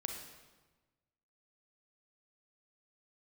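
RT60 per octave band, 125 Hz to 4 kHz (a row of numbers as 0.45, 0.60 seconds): 1.6, 1.4, 1.3, 1.2, 1.1, 1.0 seconds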